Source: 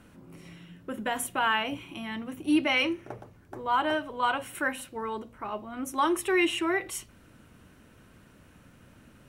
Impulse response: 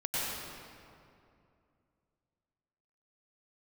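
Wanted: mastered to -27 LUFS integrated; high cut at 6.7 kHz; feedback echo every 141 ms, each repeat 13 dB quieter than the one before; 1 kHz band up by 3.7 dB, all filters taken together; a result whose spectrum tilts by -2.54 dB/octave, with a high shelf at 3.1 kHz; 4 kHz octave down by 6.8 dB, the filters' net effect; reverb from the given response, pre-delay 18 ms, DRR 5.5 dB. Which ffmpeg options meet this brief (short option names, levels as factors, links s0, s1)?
-filter_complex "[0:a]lowpass=6700,equalizer=f=1000:t=o:g=5.5,highshelf=f=3100:g=-8,equalizer=f=4000:t=o:g=-5.5,aecho=1:1:141|282|423:0.224|0.0493|0.0108,asplit=2[s0][s1];[1:a]atrim=start_sample=2205,adelay=18[s2];[s1][s2]afir=irnorm=-1:irlink=0,volume=0.224[s3];[s0][s3]amix=inputs=2:normalize=0,volume=1.06"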